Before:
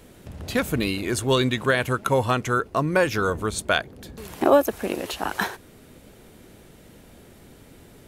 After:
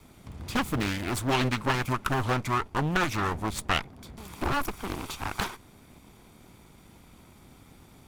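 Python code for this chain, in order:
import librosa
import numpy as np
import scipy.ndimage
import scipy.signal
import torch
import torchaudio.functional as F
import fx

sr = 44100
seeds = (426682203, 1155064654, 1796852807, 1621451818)

y = fx.lower_of_two(x, sr, delay_ms=0.87)
y = fx.doppler_dist(y, sr, depth_ms=0.99)
y = F.gain(torch.from_numpy(y), -3.0).numpy()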